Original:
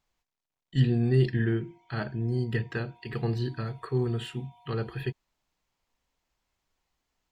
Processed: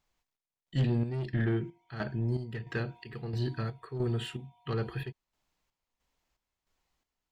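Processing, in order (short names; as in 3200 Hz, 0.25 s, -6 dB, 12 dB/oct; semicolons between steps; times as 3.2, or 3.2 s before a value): soft clip -22 dBFS, distortion -13 dB; chopper 1.5 Hz, depth 60%, duty 55%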